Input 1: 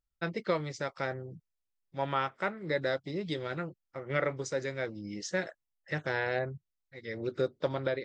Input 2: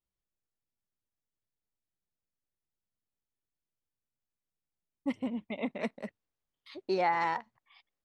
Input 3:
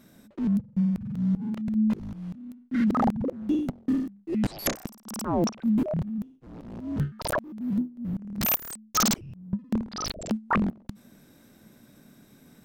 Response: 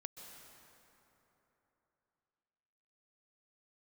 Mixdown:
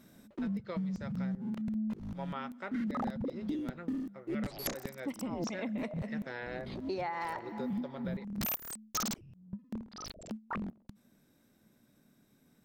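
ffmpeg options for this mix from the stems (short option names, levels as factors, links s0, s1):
-filter_complex "[0:a]highpass=120,adelay=200,volume=0.316,asplit=2[s0][s1];[s1]volume=0.126[s2];[1:a]volume=0.668,asplit=3[s3][s4][s5];[s4]volume=0.596[s6];[2:a]acontrast=74,volume=0.299,afade=t=out:st=8.99:d=0.27:silence=0.354813[s7];[s5]apad=whole_len=557492[s8];[s7][s8]sidechaincompress=threshold=0.00708:ratio=8:attack=7.6:release=195[s9];[3:a]atrim=start_sample=2205[s10];[s2][s6]amix=inputs=2:normalize=0[s11];[s11][s10]afir=irnorm=-1:irlink=0[s12];[s0][s3][s9][s12]amix=inputs=4:normalize=0,acompressor=threshold=0.0224:ratio=6"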